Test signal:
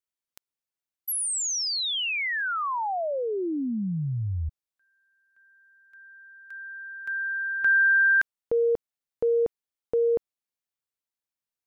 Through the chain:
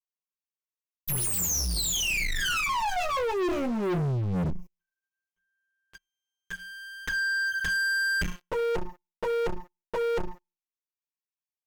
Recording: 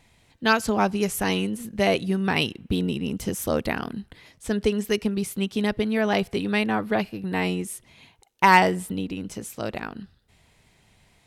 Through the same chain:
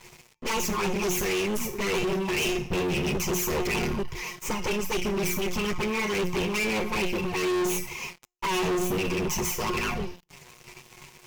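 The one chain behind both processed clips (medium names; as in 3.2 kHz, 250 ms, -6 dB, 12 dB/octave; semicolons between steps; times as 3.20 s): comb filter that takes the minimum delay 8.2 ms; rippled EQ curve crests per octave 0.77, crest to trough 15 dB; reverse; compression 5:1, threshold -32 dBFS; reverse; feedback comb 180 Hz, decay 0.38 s, harmonics all, mix 80%; touch-sensitive flanger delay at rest 10.1 ms, full sweep at -40.5 dBFS; in parallel at -9 dB: hard clipper -39.5 dBFS; on the sum: waveshaping leveller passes 5; trim +7 dB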